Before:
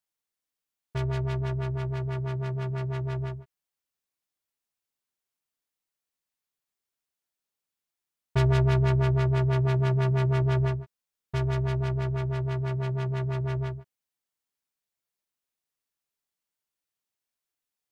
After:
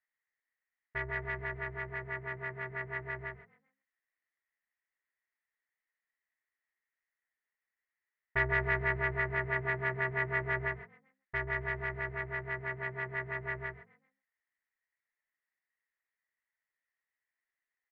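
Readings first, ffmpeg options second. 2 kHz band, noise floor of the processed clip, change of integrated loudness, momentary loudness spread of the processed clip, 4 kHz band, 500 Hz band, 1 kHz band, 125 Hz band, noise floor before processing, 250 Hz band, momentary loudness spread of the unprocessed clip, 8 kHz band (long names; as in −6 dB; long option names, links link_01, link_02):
+8.5 dB, below −85 dBFS, −7.5 dB, 10 LU, −11.5 dB, −7.0 dB, −2.5 dB, −17.5 dB, below −85 dBFS, −14.5 dB, 10 LU, can't be measured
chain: -filter_complex "[0:a]lowpass=frequency=1900:width_type=q:width=12,equalizer=frequency=150:width_type=o:width=1.4:gain=-14,asplit=4[link_01][link_02][link_03][link_04];[link_02]adelay=131,afreqshift=45,volume=-19dB[link_05];[link_03]adelay=262,afreqshift=90,volume=-28.6dB[link_06];[link_04]adelay=393,afreqshift=135,volume=-38.3dB[link_07];[link_01][link_05][link_06][link_07]amix=inputs=4:normalize=0,volume=-5.5dB"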